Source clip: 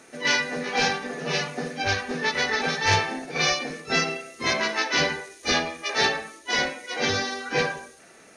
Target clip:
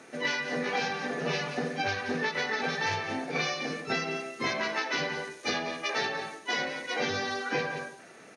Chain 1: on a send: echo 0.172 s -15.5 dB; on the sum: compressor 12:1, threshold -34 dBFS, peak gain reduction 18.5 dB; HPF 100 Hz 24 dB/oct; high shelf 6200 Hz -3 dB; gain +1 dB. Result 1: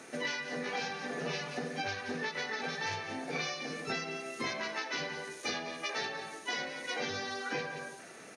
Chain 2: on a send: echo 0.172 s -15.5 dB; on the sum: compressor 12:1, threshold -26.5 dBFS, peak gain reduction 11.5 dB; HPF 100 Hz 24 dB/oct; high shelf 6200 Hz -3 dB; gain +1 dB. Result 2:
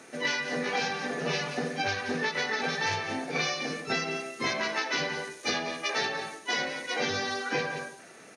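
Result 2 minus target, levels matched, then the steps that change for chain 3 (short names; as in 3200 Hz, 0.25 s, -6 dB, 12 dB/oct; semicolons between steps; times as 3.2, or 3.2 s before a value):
8000 Hz band +3.0 dB
change: high shelf 6200 Hz -10.5 dB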